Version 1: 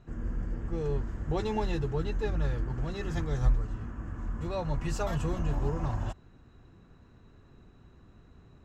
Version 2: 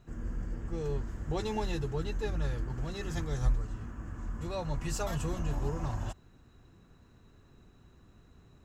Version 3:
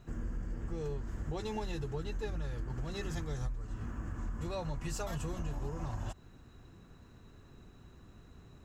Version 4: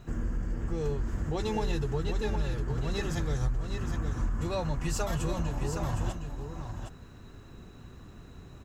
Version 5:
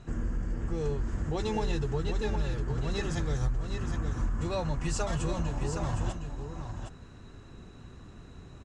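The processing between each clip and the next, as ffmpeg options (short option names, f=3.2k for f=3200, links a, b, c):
-af "highshelf=f=5.1k:g=11.5,volume=-3dB"
-af "acompressor=threshold=-37dB:ratio=6,volume=3dB"
-af "aecho=1:1:763:0.447,volume=6.5dB"
-af "aresample=22050,aresample=44100"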